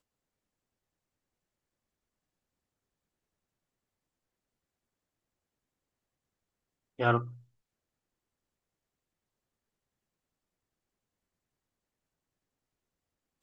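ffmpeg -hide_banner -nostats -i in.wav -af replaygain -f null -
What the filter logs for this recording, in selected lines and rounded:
track_gain = +64.0 dB
track_peak = 0.177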